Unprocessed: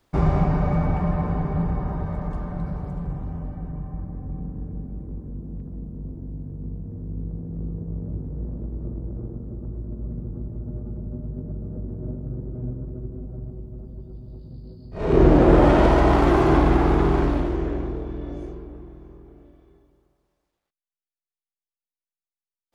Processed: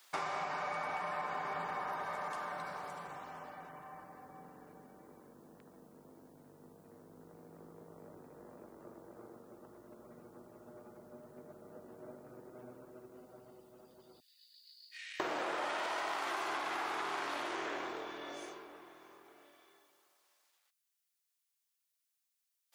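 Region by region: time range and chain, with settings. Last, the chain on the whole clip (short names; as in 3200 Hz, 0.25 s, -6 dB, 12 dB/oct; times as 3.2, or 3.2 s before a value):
14.2–15.2 Chebyshev high-pass 1800 Hz, order 5 + compressor, threshold -53 dBFS
whole clip: HPF 1100 Hz 12 dB/oct; high shelf 3800 Hz +8 dB; compressor 12:1, threshold -40 dBFS; gain +5.5 dB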